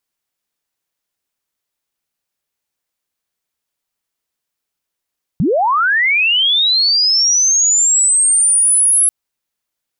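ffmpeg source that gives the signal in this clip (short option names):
-f lavfi -i "aevalsrc='pow(10,(-11+2.5*t/3.69)/20)*sin(2*PI*(130*t+10870*t*t/(2*3.69)))':d=3.69:s=44100"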